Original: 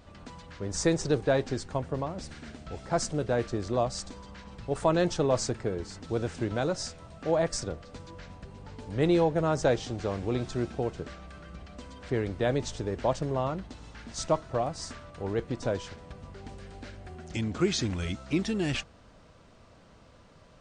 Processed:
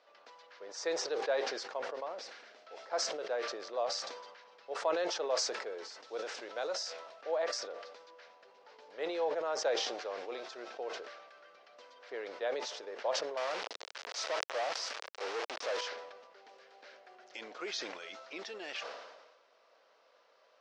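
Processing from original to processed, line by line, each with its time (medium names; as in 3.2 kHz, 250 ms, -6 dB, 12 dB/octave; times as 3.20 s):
5.27–6.90 s: treble shelf 6.7 kHz +9.5 dB
13.37–15.81 s: companded quantiser 2-bit
whole clip: elliptic band-pass 490–5500 Hz, stop band 80 dB; decay stretcher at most 45 dB/s; trim -6.5 dB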